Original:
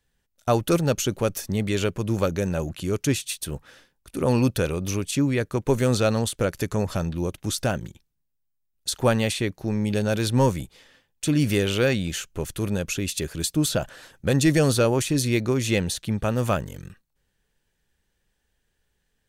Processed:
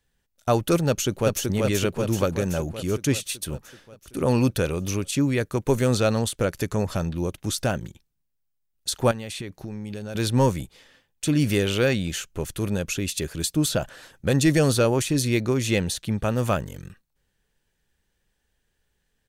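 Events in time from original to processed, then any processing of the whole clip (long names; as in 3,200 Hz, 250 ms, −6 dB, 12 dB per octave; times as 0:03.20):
0:00.88–0:01.45: delay throw 380 ms, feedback 65%, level −3 dB
0:05.20–0:05.79: high-shelf EQ 6,400 Hz +4.5 dB
0:09.11–0:10.15: downward compressor 8 to 1, threshold −29 dBFS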